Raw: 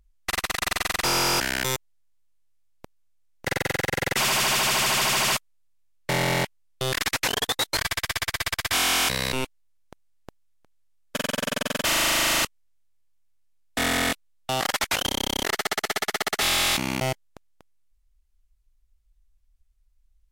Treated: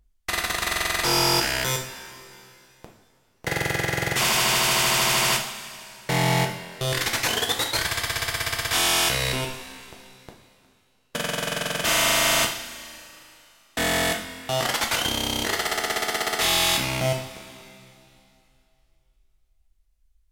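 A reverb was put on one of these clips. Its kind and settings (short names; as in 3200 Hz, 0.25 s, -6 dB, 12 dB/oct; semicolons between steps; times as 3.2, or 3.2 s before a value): two-slope reverb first 0.48 s, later 2.8 s, from -15 dB, DRR 1.5 dB; gain -1 dB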